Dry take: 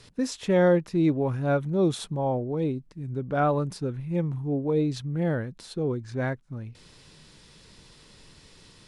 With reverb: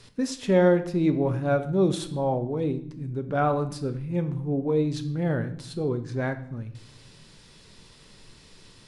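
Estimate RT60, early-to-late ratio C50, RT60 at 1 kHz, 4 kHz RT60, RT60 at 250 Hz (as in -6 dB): 0.65 s, 13.0 dB, 0.60 s, 0.55 s, 1.1 s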